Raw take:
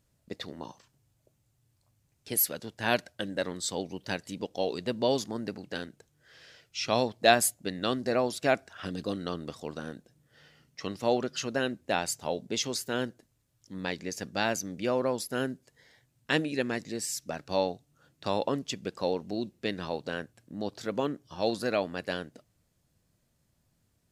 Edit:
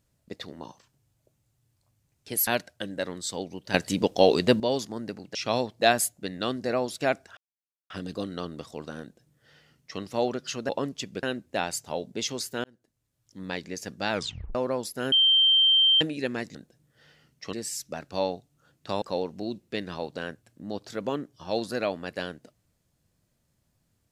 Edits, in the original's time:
2.47–2.86 s: delete
4.13–4.99 s: gain +11.5 dB
5.74–6.77 s: delete
8.79 s: insert silence 0.53 s
9.91–10.89 s: copy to 16.90 s
12.99–13.74 s: fade in
14.46 s: tape stop 0.44 s
15.47–16.36 s: bleep 3.14 kHz -16.5 dBFS
18.39–18.93 s: move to 11.58 s

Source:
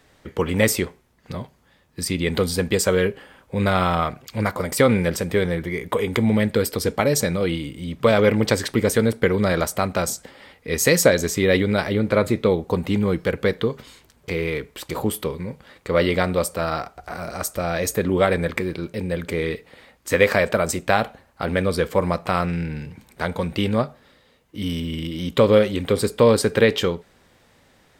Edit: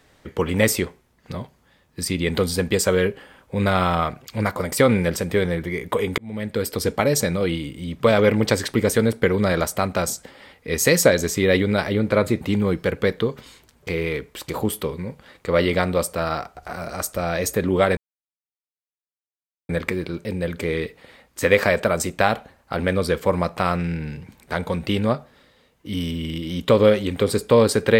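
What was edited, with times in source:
6.18–6.81 s: fade in linear
12.41–12.82 s: delete
18.38 s: insert silence 1.72 s

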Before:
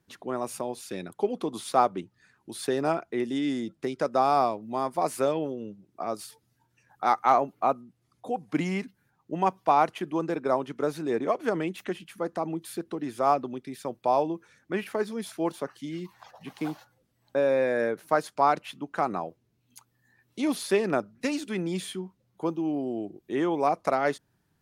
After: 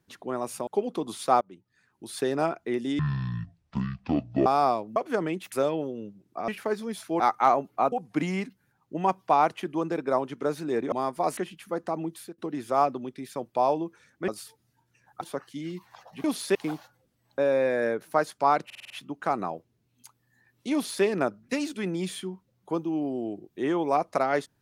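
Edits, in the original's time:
0.67–1.13 s: delete
1.87–2.68 s: fade in, from -22.5 dB
3.45–4.20 s: speed 51%
4.70–5.15 s: swap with 11.30–11.86 s
6.11–7.04 s: swap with 14.77–15.49 s
7.76–8.30 s: delete
12.61–12.87 s: fade out, to -20 dB
18.62 s: stutter 0.05 s, 6 plays
20.45–20.76 s: copy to 16.52 s

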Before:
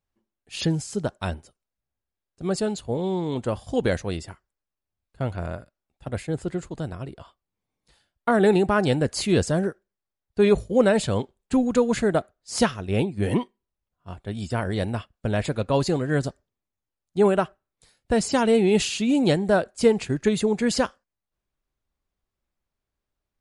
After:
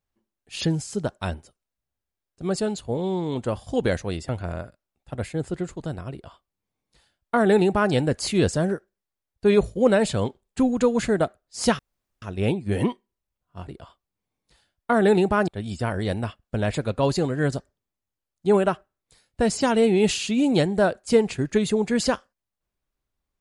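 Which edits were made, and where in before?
4.29–5.23 s: delete
7.06–8.86 s: copy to 14.19 s
12.73 s: insert room tone 0.43 s

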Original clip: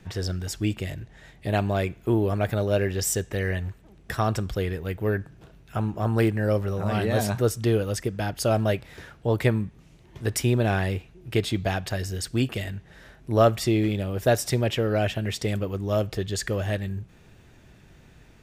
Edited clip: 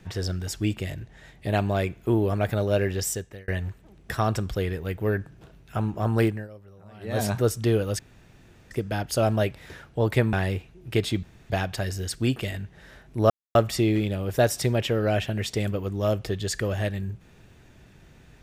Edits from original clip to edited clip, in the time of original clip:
2.94–3.48 s: fade out
6.24–7.24 s: dip -22 dB, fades 0.24 s
7.99 s: insert room tone 0.72 s
9.61–10.73 s: delete
11.63 s: insert room tone 0.27 s
13.43 s: insert silence 0.25 s

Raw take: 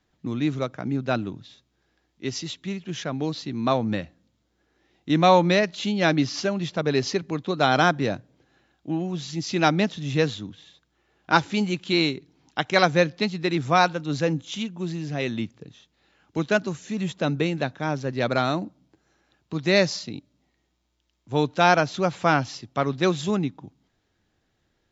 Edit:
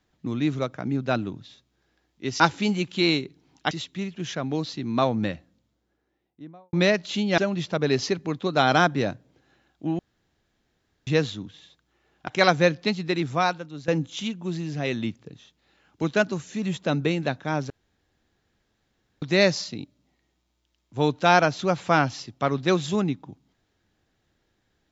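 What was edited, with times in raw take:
4.02–5.42 s: studio fade out
6.07–6.42 s: delete
9.03–10.11 s: room tone
11.32–12.63 s: move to 2.40 s
13.39–14.23 s: fade out, to -15.5 dB
18.05–19.57 s: room tone

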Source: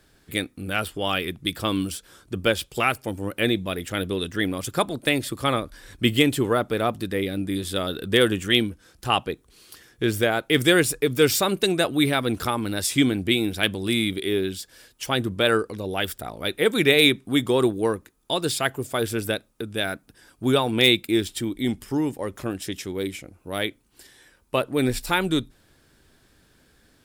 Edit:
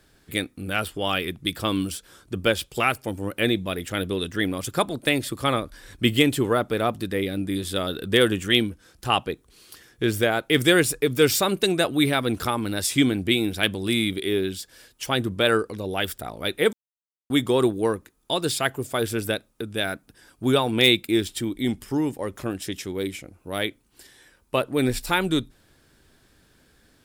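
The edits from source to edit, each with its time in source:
16.73–17.30 s: mute

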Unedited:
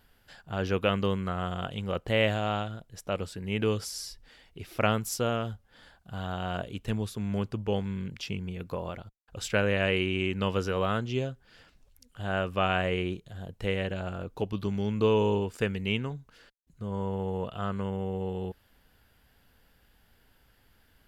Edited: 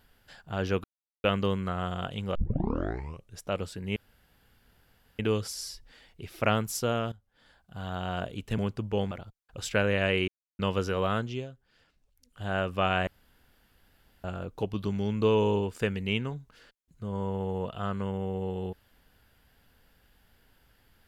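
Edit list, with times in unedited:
0.84 s: insert silence 0.40 s
1.95 s: tape start 1.06 s
3.56 s: insert room tone 1.23 s
5.49–6.38 s: fade in, from -16.5 dB
6.95–7.33 s: delete
7.86–8.90 s: delete
10.07–10.38 s: mute
10.99–12.23 s: dip -9.5 dB, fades 0.27 s
12.86–14.03 s: room tone

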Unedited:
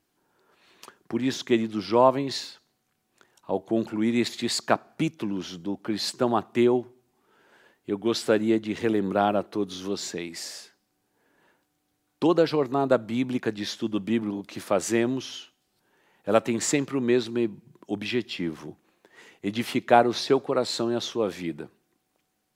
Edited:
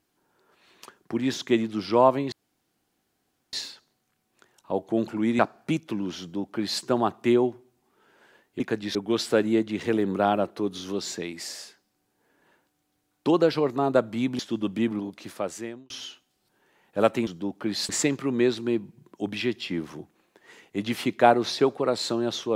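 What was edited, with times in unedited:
2.32 s: insert room tone 1.21 s
4.18–4.70 s: delete
5.51–6.13 s: copy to 16.58 s
13.35–13.70 s: move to 7.91 s
14.24–15.21 s: fade out

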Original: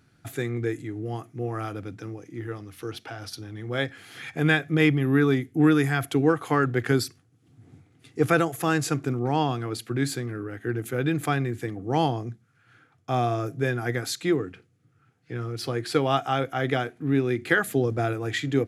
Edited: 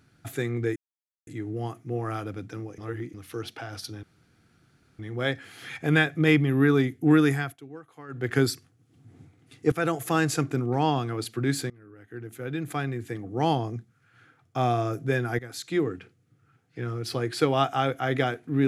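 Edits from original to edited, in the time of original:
0.76 s: insert silence 0.51 s
2.27–2.63 s: reverse
3.52 s: insert room tone 0.96 s
5.83–6.88 s: dip -22 dB, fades 0.27 s
8.25–8.50 s: fade in, from -15.5 dB
10.23–12.23 s: fade in, from -23.5 dB
13.92–14.44 s: fade in, from -16 dB

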